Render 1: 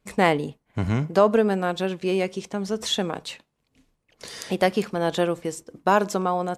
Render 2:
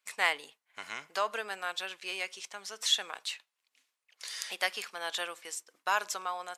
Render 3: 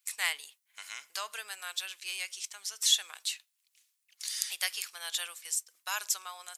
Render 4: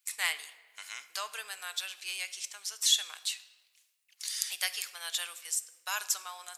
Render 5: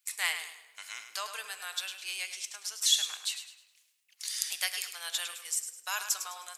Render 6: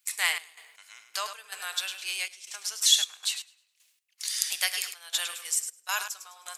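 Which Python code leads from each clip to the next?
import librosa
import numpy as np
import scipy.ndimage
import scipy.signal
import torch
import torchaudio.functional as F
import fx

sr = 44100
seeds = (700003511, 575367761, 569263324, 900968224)

y1 = scipy.signal.sosfilt(scipy.signal.butter(2, 1500.0, 'highpass', fs=sr, output='sos'), x)
y1 = y1 * librosa.db_to_amplitude(-1.0)
y2 = np.diff(y1, prepend=0.0)
y2 = y2 * librosa.db_to_amplitude(7.5)
y3 = fx.room_shoebox(y2, sr, seeds[0], volume_m3=1100.0, walls='mixed', distance_m=0.41)
y4 = fx.echo_feedback(y3, sr, ms=104, feedback_pct=34, wet_db=-9.5)
y5 = fx.step_gate(y4, sr, bpm=79, pattern='xx.x..x.xxxx.x', floor_db=-12.0, edge_ms=4.5)
y5 = y5 * librosa.db_to_amplitude(4.5)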